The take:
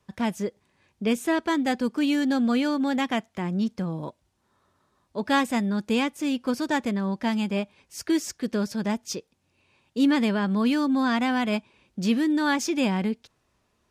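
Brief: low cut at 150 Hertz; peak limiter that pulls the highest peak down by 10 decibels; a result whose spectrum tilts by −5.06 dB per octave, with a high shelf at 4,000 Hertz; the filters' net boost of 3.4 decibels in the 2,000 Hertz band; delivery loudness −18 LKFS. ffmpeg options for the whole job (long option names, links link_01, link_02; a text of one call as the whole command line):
ffmpeg -i in.wav -af "highpass=150,equalizer=frequency=2000:width_type=o:gain=5,highshelf=frequency=4000:gain=-3.5,volume=10dB,alimiter=limit=-8dB:level=0:latency=1" out.wav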